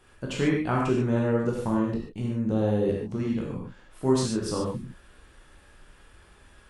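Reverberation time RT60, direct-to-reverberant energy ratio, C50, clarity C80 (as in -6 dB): no single decay rate, -2.5 dB, 1.5 dB, 4.0 dB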